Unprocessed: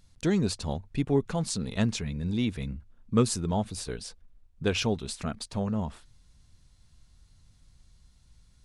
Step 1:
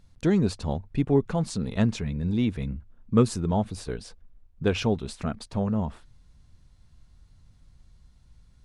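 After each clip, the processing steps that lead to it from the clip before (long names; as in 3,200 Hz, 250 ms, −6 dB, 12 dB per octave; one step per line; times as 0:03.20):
high-shelf EQ 2,700 Hz −10 dB
level +3.5 dB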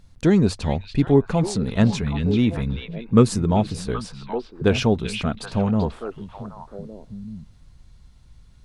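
echo through a band-pass that steps 387 ms, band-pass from 2,900 Hz, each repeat −1.4 octaves, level −3 dB
level +5.5 dB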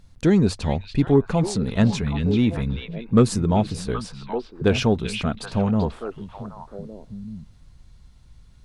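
soft clipping −4 dBFS, distortion −23 dB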